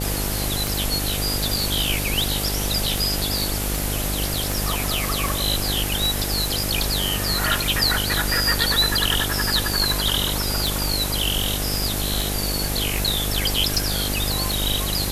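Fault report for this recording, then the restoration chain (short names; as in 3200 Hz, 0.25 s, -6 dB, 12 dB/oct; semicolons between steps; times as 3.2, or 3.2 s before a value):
buzz 50 Hz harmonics 17 -27 dBFS
tick 78 rpm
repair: de-click; de-hum 50 Hz, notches 17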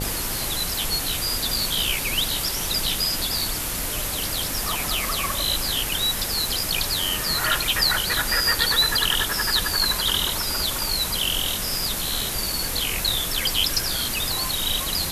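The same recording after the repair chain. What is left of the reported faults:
none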